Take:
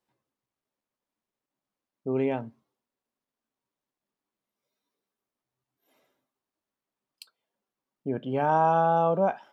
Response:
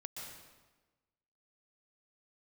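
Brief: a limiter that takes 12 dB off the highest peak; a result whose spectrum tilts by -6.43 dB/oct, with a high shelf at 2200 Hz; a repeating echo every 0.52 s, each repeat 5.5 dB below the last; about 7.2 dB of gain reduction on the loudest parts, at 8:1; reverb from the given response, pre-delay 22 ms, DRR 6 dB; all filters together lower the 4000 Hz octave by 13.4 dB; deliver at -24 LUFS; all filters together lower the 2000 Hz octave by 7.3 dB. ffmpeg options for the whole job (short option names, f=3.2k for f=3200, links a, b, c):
-filter_complex "[0:a]equalizer=f=2k:t=o:g=-6,highshelf=f=2.2k:g=-7,equalizer=f=4k:t=o:g=-9,acompressor=threshold=-27dB:ratio=8,alimiter=level_in=8.5dB:limit=-24dB:level=0:latency=1,volume=-8.5dB,aecho=1:1:520|1040|1560|2080|2600|3120|3640:0.531|0.281|0.149|0.079|0.0419|0.0222|0.0118,asplit=2[a][b];[1:a]atrim=start_sample=2205,adelay=22[c];[b][c]afir=irnorm=-1:irlink=0,volume=-3.5dB[d];[a][d]amix=inputs=2:normalize=0,volume=18dB"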